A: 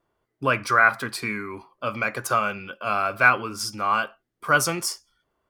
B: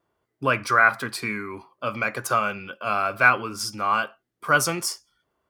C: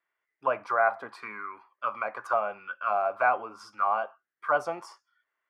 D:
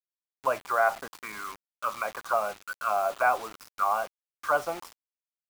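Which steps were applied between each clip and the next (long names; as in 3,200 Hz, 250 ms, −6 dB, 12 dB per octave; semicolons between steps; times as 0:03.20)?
high-pass filter 54 Hz
envelope filter 720–2,000 Hz, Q 3.8, down, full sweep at −20.5 dBFS; level +4.5 dB
bit reduction 7 bits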